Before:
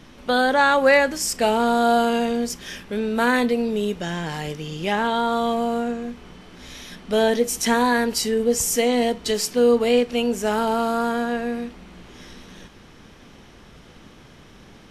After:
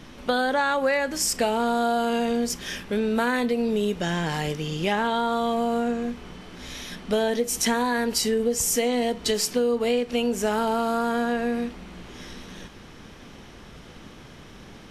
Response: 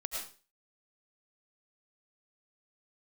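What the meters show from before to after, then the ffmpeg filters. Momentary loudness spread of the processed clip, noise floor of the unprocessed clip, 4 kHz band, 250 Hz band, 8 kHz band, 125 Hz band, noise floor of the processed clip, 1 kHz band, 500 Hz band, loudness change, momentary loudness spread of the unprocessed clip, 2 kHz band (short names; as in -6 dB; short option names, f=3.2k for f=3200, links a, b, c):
16 LU, -48 dBFS, -2.0 dB, -2.5 dB, -0.5 dB, +0.5 dB, -46 dBFS, -4.0 dB, -4.0 dB, -3.5 dB, 13 LU, -5.0 dB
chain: -af "acompressor=threshold=-22dB:ratio=6,volume=2dB"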